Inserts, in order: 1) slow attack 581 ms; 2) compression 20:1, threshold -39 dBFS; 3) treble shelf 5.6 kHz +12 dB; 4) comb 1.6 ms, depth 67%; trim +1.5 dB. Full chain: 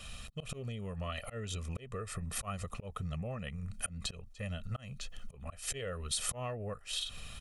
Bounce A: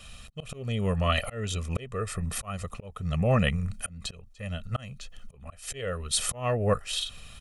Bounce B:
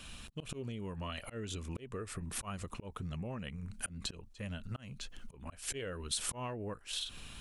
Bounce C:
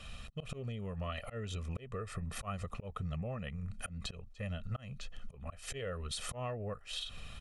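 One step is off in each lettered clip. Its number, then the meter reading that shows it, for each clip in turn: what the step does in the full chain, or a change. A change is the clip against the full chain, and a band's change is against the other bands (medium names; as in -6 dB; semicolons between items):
2, mean gain reduction 6.0 dB; 4, 250 Hz band +2.5 dB; 3, 8 kHz band -8.0 dB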